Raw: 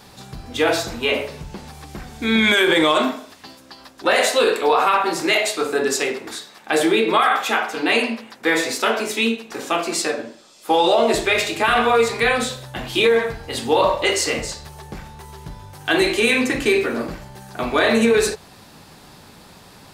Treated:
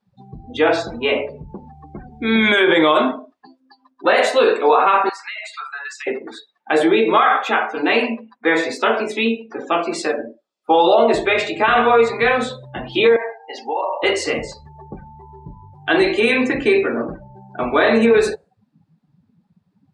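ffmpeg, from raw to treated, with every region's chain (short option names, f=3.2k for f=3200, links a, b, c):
-filter_complex "[0:a]asettb=1/sr,asplit=3[a][b][c];[a]atrim=end=5.094[d];[b]atrim=start=5.09:end=6.07,asetpts=PTS-STARTPTS,afade=t=in:d=0.004:c=qsin,afade=t=out:st=0.976:d=0.004:c=qsin,highpass=f=1k:w=0.5412,highpass=f=1k:w=1.3066,acompressor=threshold=-25dB:ratio=10:attack=3.2:release=140:knee=1:detection=peak[e];[c]atrim=start=6.066[f];[d][e]acrossfade=d=0.004:c1=hsin:c2=qsin[g];[g][f]acrossfade=d=0.004:c1=qsin:c2=hsin,asettb=1/sr,asplit=3[h][i][j];[h]atrim=end=13.164[k];[i]atrim=start=13.16:end=14.03,asetpts=PTS-STARTPTS,afade=t=in:d=0.004:c=qsin,afade=t=out:st=0.866:d=0.004:c=qsin,acompressor=threshold=-18dB:ratio=6:attack=3.2:release=140:knee=1:detection=peak,highpass=480,equalizer=f=520:t=q:w=4:g=-5,equalizer=f=780:t=q:w=4:g=5,equalizer=f=1.3k:t=q:w=4:g=-10,equalizer=f=3.6k:t=q:w=4:g=-10,equalizer=f=5.6k:t=q:w=4:g=6,equalizer=f=8.2k:t=q:w=4:g=-9,lowpass=f=9.1k:w=0.5412,lowpass=f=9.1k:w=1.3066[l];[j]atrim=start=14.026[m];[k][l]acrossfade=d=0.004:c1=hsin:c2=qsin[n];[n][m]acrossfade=d=0.004:c1=qsin:c2=hsin,afftdn=nr=34:nf=-32,lowpass=f=2k:p=1,lowshelf=f=130:g=-9.5,volume=4dB"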